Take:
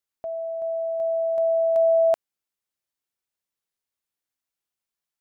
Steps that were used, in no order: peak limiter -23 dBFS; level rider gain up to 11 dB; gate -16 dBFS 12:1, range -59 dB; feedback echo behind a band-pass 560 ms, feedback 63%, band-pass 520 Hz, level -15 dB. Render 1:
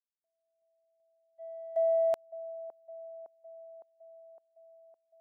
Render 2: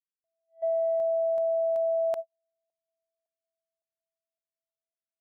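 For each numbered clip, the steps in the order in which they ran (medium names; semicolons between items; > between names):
gate > level rider > peak limiter > feedback echo behind a band-pass; level rider > feedback echo behind a band-pass > gate > peak limiter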